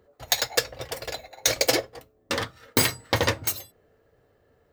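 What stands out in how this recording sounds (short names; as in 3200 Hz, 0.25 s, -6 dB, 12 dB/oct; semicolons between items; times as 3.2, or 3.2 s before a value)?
noise floor -65 dBFS; spectral tilt -2.5 dB/oct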